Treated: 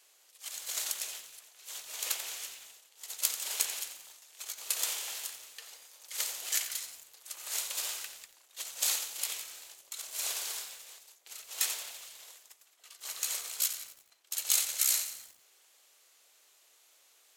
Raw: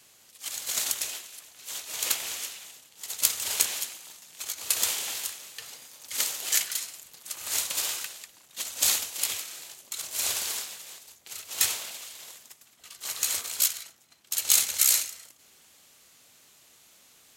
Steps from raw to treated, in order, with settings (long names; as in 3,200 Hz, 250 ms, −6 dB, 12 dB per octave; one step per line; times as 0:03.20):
high-pass filter 390 Hz 24 dB per octave
feedback echo at a low word length 88 ms, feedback 55%, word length 7 bits, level −11 dB
level −6.5 dB